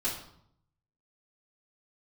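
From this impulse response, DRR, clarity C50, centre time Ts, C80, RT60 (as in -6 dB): -10.5 dB, 5.5 dB, 34 ms, 9.5 dB, 0.70 s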